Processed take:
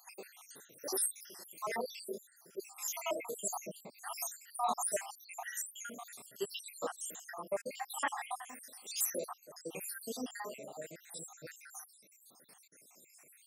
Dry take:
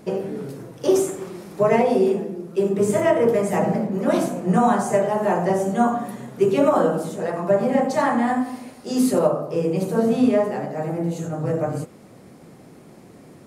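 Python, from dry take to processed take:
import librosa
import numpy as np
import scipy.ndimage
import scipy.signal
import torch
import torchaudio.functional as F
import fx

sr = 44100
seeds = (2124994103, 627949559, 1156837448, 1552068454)

y = fx.spec_dropout(x, sr, seeds[0], share_pct=77)
y = np.diff(y, prepend=0.0)
y = y * 10.0 ** (5.5 / 20.0)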